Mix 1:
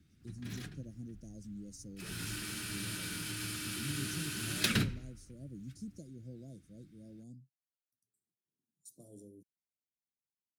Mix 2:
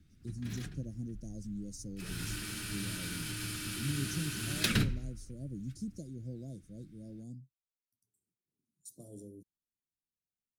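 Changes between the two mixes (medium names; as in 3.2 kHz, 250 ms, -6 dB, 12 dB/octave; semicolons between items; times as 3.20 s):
speech +4.0 dB; master: remove high-pass 100 Hz 6 dB/octave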